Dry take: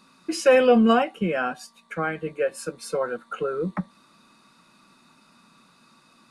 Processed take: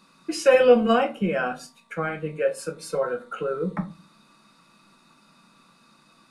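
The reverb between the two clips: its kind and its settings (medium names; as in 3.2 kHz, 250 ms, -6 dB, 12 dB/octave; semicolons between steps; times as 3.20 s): simulated room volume 130 m³, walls furnished, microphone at 0.76 m; trim -1.5 dB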